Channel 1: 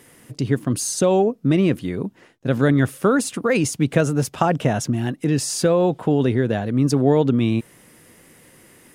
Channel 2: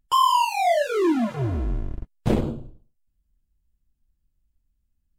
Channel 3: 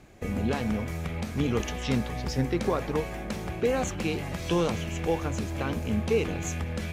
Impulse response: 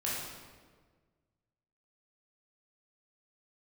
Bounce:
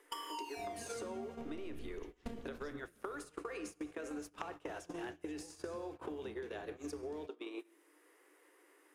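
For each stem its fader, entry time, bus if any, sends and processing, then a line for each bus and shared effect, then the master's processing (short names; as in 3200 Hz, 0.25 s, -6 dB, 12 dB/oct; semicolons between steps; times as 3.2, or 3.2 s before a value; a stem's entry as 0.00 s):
-3.0 dB, 0.00 s, send -10.5 dB, compressor 10:1, threshold -22 dBFS, peak gain reduction 12 dB; rippled Chebyshev high-pass 290 Hz, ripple 6 dB; three-band squash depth 70%
-2.0 dB, 0.00 s, send -12 dB, notch 1000 Hz, Q 15; compressor 4:1, threshold -27 dBFS, peak gain reduction 10.5 dB; robotiser 232 Hz
-15.0 dB, 0.35 s, no send, limiter -20 dBFS, peak gain reduction 5.5 dB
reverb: on, RT60 1.6 s, pre-delay 14 ms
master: gate -34 dBFS, range -24 dB; compressor 12:1, threshold -40 dBFS, peak gain reduction 16 dB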